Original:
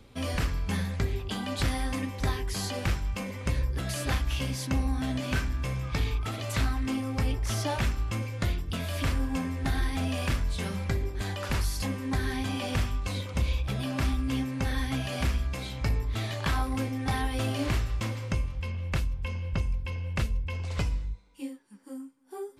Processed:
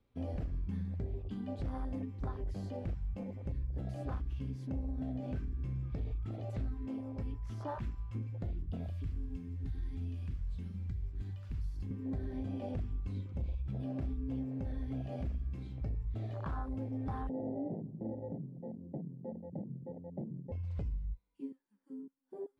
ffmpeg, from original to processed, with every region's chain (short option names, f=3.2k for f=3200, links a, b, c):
-filter_complex "[0:a]asettb=1/sr,asplit=3[a][b][c];[a]atrim=end=6.744[d];[b]atrim=start=6.74:end=8.15,asetpts=PTS-STARTPTS,afade=t=in:d=0.004:c=qsin,afade=t=out:st=1.406:d=0.004:c=qsin,lowshelf=f=410:g=-6,aeval=exprs='val(0)+0.00708*sin(2*PI*1000*n/s)':c=same[e];[c]atrim=start=8.146[f];[d][e]acrossfade=d=0.004:c1=hsin:c2=qsin[g];[g][f]acrossfade=d=0.004:c1=qsin:c2=hsin,asettb=1/sr,asplit=3[h][i][j];[h]atrim=end=8.884[k];[i]atrim=start=8.88:end=11.91,asetpts=PTS-STARTPTS,afade=t=in:d=0.004:c=qsin,afade=t=out:st=3.026:d=0.004:c=qsin,acrossover=split=130|2200[l][m][n];[l]acompressor=threshold=-29dB:ratio=4[o];[m]acompressor=threshold=-43dB:ratio=4[p];[n]acompressor=threshold=-40dB:ratio=4[q];[o][p][q]amix=inputs=3:normalize=0,acrusher=bits=7:mix=0:aa=0.5[r];[j]atrim=start=11.906[s];[k][r]acrossfade=d=0.004:c1=hsin:c2=qsin[t];[t][s]acrossfade=d=0.004:c1=qsin:c2=hsin,asettb=1/sr,asplit=3[u][v][w];[u]atrim=end=17.294[x];[v]atrim=start=17.29:end=20.52,asetpts=PTS-STARTPTS,afade=t=in:d=0.004:c=qsin,afade=t=out:st=3.226:d=0.004:c=qsin,aeval=exprs='0.106*sin(PI/2*1.78*val(0)/0.106)':c=same,asuperpass=centerf=310:order=12:qfactor=0.54[y];[w]atrim=start=20.516[z];[x][y]acrossfade=d=0.004:c1=hsin:c2=qsin[aa];[aa][z]acrossfade=d=0.004:c1=qsin:c2=hsin,lowpass=f=2.5k:p=1,afwtdn=0.0282,alimiter=level_in=1.5dB:limit=-24dB:level=0:latency=1:release=110,volume=-1.5dB,volume=-5dB"